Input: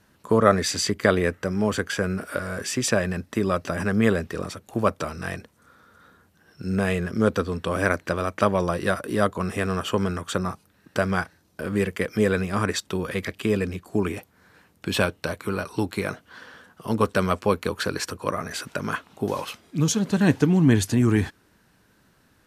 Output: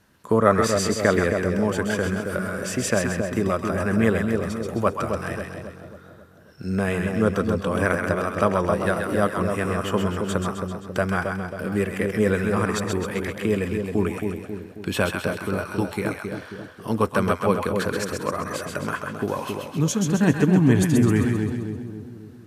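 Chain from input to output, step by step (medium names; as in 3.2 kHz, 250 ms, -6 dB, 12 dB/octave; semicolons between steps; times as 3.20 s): two-band feedback delay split 760 Hz, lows 270 ms, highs 131 ms, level -4.5 dB; dynamic bell 4.3 kHz, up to -6 dB, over -44 dBFS, Q 1.2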